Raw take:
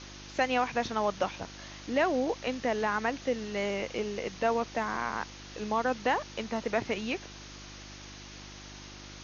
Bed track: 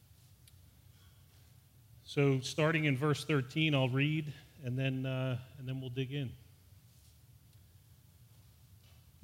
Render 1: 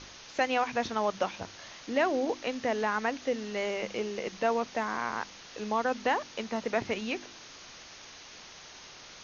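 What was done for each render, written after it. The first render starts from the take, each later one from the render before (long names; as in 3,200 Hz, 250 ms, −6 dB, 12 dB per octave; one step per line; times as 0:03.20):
hum removal 50 Hz, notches 7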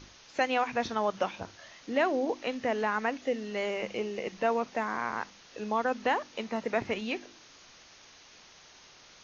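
noise reduction from a noise print 6 dB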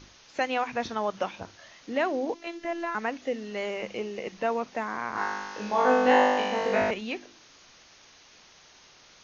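0:02.34–0:02.95: phases set to zero 338 Hz
0:05.13–0:06.91: flutter between parallel walls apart 3.4 metres, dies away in 1.4 s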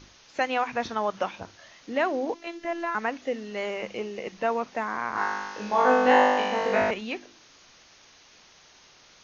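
dynamic equaliser 1,200 Hz, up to +3 dB, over −37 dBFS, Q 0.79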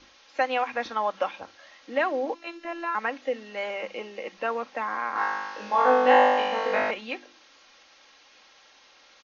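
three-way crossover with the lows and the highs turned down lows −13 dB, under 330 Hz, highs −18 dB, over 5,600 Hz
comb filter 3.7 ms, depth 47%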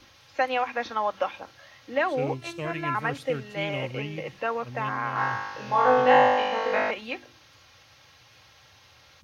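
mix in bed track −3.5 dB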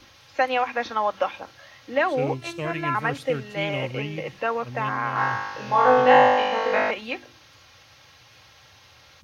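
level +3 dB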